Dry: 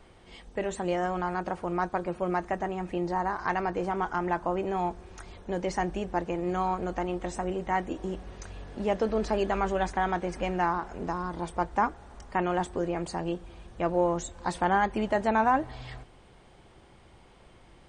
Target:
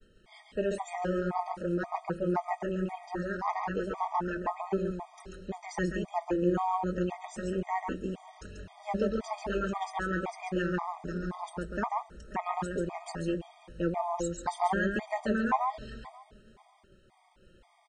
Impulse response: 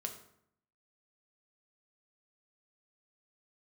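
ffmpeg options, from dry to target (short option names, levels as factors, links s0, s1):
-filter_complex "[0:a]flanger=delay=4.4:depth=1.7:regen=47:speed=0.25:shape=triangular,asplit=2[s0][s1];[s1]adelay=531,lowpass=f=1300:p=1,volume=0.1,asplit=2[s2][s3];[s3]adelay=531,lowpass=f=1300:p=1,volume=0.25[s4];[s2][s4]amix=inputs=2:normalize=0[s5];[s0][s5]amix=inputs=2:normalize=0,agate=range=0.0224:threshold=0.002:ratio=3:detection=peak,asplit=2[s6][s7];[s7]aecho=0:1:139:0.596[s8];[s6][s8]amix=inputs=2:normalize=0,afftfilt=real='re*gt(sin(2*PI*1.9*pts/sr)*(1-2*mod(floor(b*sr/1024/630),2)),0)':imag='im*gt(sin(2*PI*1.9*pts/sr)*(1-2*mod(floor(b*sr/1024/630),2)),0)':win_size=1024:overlap=0.75,volume=1.33"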